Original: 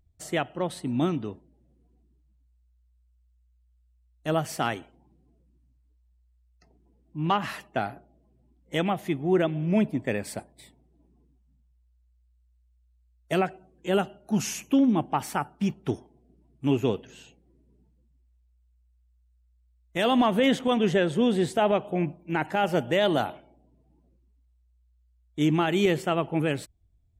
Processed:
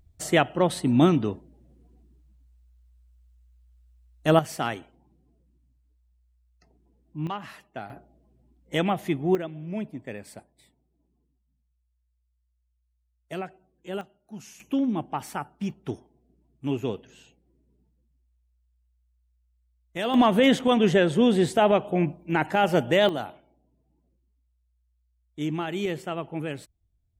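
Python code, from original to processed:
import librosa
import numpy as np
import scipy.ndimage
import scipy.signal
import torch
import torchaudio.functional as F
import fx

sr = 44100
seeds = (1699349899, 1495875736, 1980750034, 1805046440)

y = fx.gain(x, sr, db=fx.steps((0.0, 7.0), (4.39, -1.0), (7.27, -9.0), (7.9, 1.5), (9.35, -9.0), (14.01, -15.5), (14.6, -4.0), (20.14, 3.0), (23.09, -6.0)))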